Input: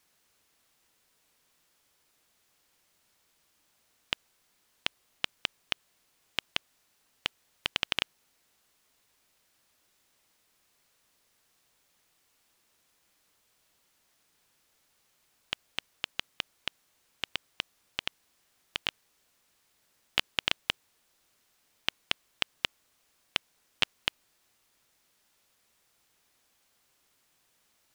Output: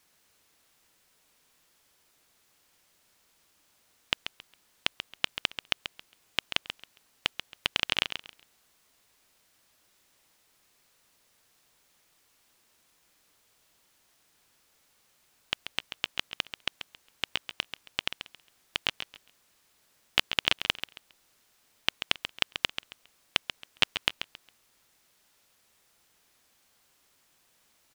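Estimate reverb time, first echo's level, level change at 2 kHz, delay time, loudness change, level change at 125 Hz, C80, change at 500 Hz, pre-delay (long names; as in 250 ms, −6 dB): no reverb audible, −9.5 dB, +3.5 dB, 136 ms, +3.0 dB, +3.5 dB, no reverb audible, +3.5 dB, no reverb audible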